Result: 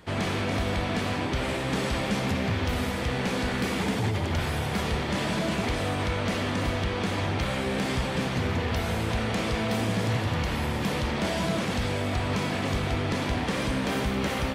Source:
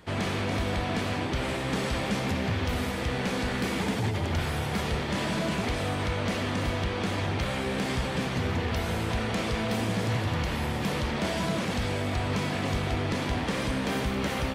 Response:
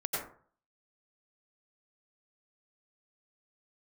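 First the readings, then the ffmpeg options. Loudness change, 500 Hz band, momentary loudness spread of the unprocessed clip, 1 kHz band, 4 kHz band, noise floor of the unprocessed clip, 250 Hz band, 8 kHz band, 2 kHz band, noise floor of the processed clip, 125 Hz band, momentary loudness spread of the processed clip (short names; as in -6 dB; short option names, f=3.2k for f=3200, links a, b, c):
+1.5 dB, +1.5 dB, 1 LU, +1.5 dB, +1.5 dB, -31 dBFS, +1.5 dB, +1.0 dB, +1.5 dB, -30 dBFS, +1.0 dB, 1 LU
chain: -filter_complex "[0:a]asplit=2[a][b];[1:a]atrim=start_sample=2205,asetrate=74970,aresample=44100[c];[b][c]afir=irnorm=-1:irlink=0,volume=-11.5dB[d];[a][d]amix=inputs=2:normalize=0"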